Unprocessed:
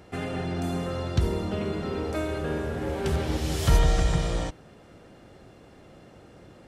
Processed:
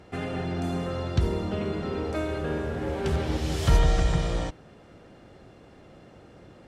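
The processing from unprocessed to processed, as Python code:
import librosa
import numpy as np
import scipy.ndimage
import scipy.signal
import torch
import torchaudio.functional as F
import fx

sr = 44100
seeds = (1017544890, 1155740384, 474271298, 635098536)

y = fx.high_shelf(x, sr, hz=10000.0, db=-11.5)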